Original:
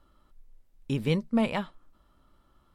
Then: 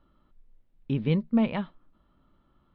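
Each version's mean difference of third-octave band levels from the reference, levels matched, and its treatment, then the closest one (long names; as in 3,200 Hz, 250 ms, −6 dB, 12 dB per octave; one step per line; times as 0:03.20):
4.5 dB: inverse Chebyshev low-pass filter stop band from 7,300 Hz, stop band 40 dB
parametric band 190 Hz +6.5 dB 1.9 octaves
level −3.5 dB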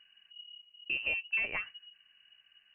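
12.5 dB: downward compressor 2.5 to 1, threshold −28 dBFS, peak gain reduction 6 dB
voice inversion scrambler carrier 2,900 Hz
level −3 dB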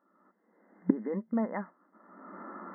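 9.5 dB: camcorder AGC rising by 37 dB per second
brick-wall band-pass 180–2,100 Hz
level −5 dB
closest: first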